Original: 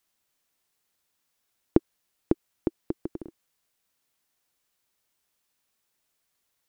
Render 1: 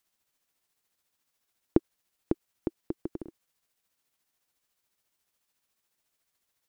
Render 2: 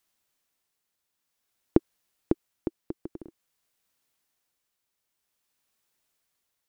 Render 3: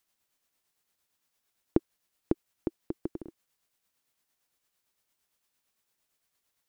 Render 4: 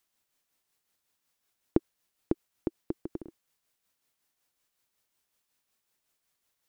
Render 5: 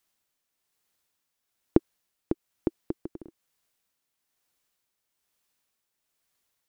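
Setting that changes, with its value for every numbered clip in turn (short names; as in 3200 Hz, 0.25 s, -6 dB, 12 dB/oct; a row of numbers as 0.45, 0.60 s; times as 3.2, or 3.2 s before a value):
tremolo, rate: 14, 0.51, 8.8, 5.4, 1.1 Hz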